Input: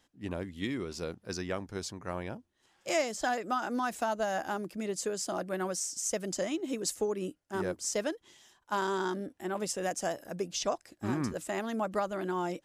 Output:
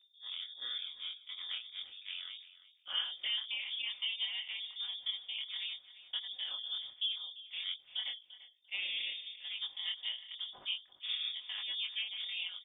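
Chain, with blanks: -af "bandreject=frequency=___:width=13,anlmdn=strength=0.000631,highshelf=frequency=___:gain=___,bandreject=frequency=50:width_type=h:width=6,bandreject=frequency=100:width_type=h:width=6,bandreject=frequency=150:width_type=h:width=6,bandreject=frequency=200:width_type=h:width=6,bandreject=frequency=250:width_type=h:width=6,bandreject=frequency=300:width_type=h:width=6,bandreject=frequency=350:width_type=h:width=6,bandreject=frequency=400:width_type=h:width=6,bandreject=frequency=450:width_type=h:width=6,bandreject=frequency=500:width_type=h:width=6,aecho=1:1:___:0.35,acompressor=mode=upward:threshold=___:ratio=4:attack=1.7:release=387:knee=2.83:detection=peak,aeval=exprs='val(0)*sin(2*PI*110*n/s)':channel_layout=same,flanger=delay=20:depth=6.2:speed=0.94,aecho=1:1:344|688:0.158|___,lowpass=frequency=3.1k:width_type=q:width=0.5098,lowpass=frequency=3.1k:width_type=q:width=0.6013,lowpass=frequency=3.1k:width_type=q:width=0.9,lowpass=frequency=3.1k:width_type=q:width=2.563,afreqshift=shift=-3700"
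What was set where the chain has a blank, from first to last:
2k, 2.8k, -10.5, 4.3, 0.00355, 0.0238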